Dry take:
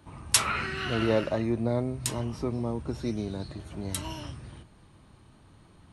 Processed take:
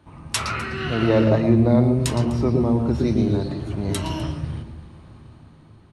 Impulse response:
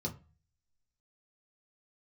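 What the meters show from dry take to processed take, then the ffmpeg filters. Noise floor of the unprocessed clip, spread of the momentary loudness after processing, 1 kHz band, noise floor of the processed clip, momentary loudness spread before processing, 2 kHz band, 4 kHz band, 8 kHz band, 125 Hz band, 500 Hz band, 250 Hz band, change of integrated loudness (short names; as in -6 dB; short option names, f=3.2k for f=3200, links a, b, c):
-57 dBFS, 11 LU, +5.5 dB, -49 dBFS, 14 LU, +3.0 dB, +1.5 dB, -3.0 dB, +12.5 dB, +8.5 dB, +11.5 dB, +8.5 dB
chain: -filter_complex "[0:a]highshelf=f=6.2k:g=-10.5,dynaudnorm=f=210:g=9:m=7dB,aecho=1:1:252:0.1,asplit=2[a][b];[1:a]atrim=start_sample=2205,lowpass=8.2k,adelay=114[c];[b][c]afir=irnorm=-1:irlink=0,volume=-9dB[d];[a][d]amix=inputs=2:normalize=0,volume=1.5dB"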